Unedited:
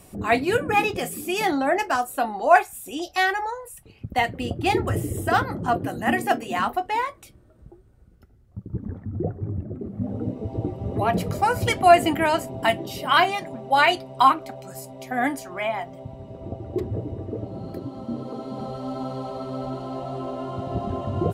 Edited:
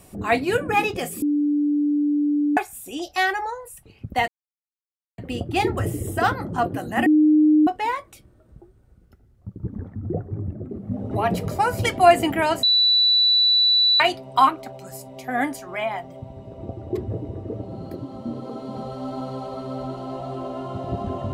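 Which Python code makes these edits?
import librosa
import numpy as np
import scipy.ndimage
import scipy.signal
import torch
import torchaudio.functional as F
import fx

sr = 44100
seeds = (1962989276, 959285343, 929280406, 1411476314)

y = fx.edit(x, sr, fx.bleep(start_s=1.22, length_s=1.35, hz=293.0, db=-17.5),
    fx.insert_silence(at_s=4.28, length_s=0.9),
    fx.bleep(start_s=6.16, length_s=0.61, hz=305.0, db=-12.0),
    fx.cut(start_s=10.21, length_s=0.73),
    fx.bleep(start_s=12.46, length_s=1.37, hz=3960.0, db=-14.0), tone=tone)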